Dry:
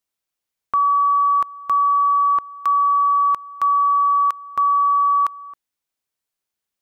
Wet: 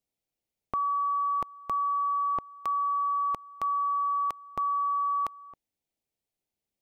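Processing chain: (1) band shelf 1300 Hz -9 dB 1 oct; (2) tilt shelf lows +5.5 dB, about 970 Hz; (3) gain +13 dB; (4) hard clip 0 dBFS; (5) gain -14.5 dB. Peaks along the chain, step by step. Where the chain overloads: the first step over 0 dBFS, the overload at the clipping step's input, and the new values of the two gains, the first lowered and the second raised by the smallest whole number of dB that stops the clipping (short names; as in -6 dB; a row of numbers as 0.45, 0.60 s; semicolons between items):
-14.5, -15.5, -2.5, -2.5, -17.0 dBFS; no overload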